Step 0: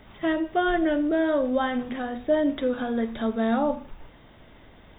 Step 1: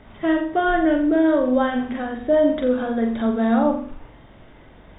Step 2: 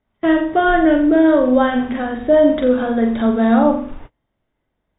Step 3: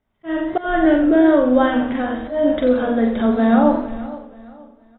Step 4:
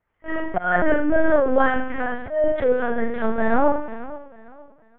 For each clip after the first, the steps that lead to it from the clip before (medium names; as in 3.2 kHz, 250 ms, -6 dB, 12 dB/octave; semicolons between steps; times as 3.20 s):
low-pass 2.3 kHz 6 dB/octave; on a send: flutter echo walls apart 7.5 m, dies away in 0.46 s; on the sum: trim +3.5 dB
gate -37 dBFS, range -32 dB; trim +5 dB
slow attack 239 ms; feedback delay 469 ms, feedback 32%, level -17 dB; modulated delay 91 ms, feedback 53%, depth 166 cents, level -14 dB; trim -1 dB
tilt shelf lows -6 dB, about 790 Hz; LPC vocoder at 8 kHz pitch kept; low-pass 2.3 kHz 24 dB/octave